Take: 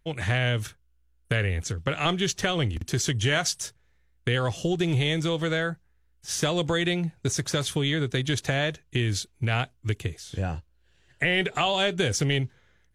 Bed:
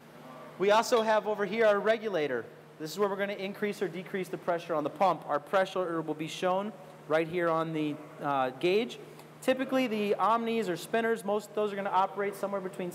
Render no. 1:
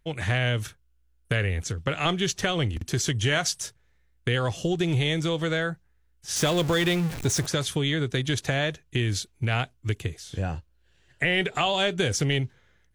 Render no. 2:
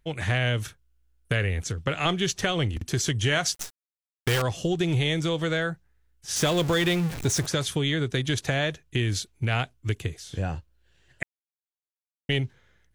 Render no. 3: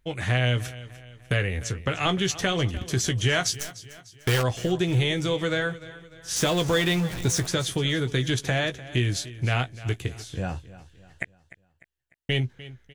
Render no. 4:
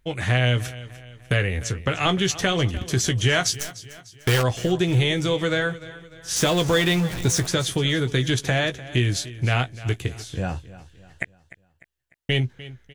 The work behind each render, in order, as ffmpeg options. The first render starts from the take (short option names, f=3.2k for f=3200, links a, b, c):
-filter_complex "[0:a]asettb=1/sr,asplit=3[a][b][c];[a]atrim=end=6.364[d];[b]atrim=start=6.36:end=7.46,asetpts=PTS-STARTPTS,afade=t=in:d=0.004:c=qsin,afade=t=out:st=1.096:d=0.004:c=qsin,aeval=exprs='val(0)+0.5*0.0355*sgn(val(0))':c=same[e];[c]atrim=start=7.456[f];[d][e]acrossfade=d=0.004:c1=hsin:c2=qsin[g];[g][f]acrossfade=d=0.004:c1=qsin:c2=hsin"
-filter_complex "[0:a]asettb=1/sr,asplit=3[a][b][c];[a]atrim=end=3.544[d];[b]atrim=start=3.54:end=4.42,asetpts=PTS-STARTPTS,afade=t=in:d=0.004:c=qsin,afade=t=out:st=0.876:d=0.004:c=qsin,acrusher=bits=5:dc=4:mix=0:aa=0.000001[e];[c]atrim=start=4.416[f];[d][e]acrossfade=d=0.004:c1=hsin:c2=qsin[g];[g][f]acrossfade=d=0.004:c1=qsin:c2=hsin,asplit=3[h][i][j];[h]atrim=end=11.23,asetpts=PTS-STARTPTS,afade=t=out:st=11.226:d=0.004:c=hsin[k];[i]atrim=start=11.23:end=12.29,asetpts=PTS-STARTPTS,volume=0[l];[j]atrim=start=12.29,asetpts=PTS-STARTPTS,afade=t=in:d=0.004:c=hsin[m];[k][l][m]concat=n=3:v=0:a=1"
-filter_complex "[0:a]asplit=2[a][b];[b]adelay=16,volume=-8.5dB[c];[a][c]amix=inputs=2:normalize=0,aecho=1:1:299|598|897|1196:0.141|0.0636|0.0286|0.0129"
-af "volume=3dB"